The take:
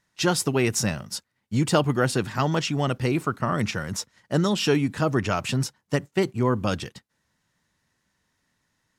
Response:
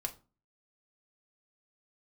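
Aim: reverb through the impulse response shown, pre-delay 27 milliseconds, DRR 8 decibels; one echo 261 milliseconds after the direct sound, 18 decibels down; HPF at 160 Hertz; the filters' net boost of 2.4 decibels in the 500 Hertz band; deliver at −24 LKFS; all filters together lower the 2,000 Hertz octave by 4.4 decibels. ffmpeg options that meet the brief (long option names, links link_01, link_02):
-filter_complex "[0:a]highpass=160,equalizer=frequency=500:width_type=o:gain=3.5,equalizer=frequency=2000:width_type=o:gain=-6.5,aecho=1:1:261:0.126,asplit=2[link_01][link_02];[1:a]atrim=start_sample=2205,adelay=27[link_03];[link_02][link_03]afir=irnorm=-1:irlink=0,volume=-8.5dB[link_04];[link_01][link_04]amix=inputs=2:normalize=0,volume=0.5dB"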